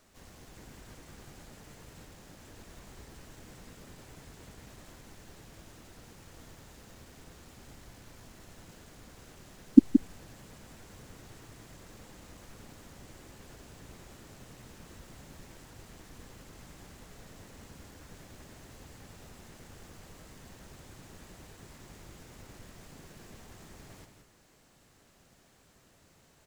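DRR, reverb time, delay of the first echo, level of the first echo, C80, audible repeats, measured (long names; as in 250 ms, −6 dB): no reverb audible, no reverb audible, 173 ms, −7.5 dB, no reverb audible, 1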